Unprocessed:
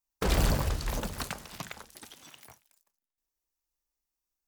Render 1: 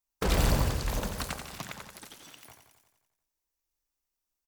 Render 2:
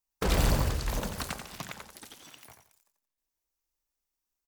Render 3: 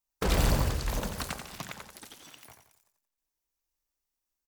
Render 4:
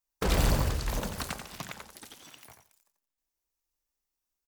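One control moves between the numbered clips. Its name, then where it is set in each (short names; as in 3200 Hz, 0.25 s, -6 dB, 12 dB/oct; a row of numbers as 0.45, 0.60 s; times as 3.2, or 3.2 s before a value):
feedback echo, feedback: 60, 26, 40, 16%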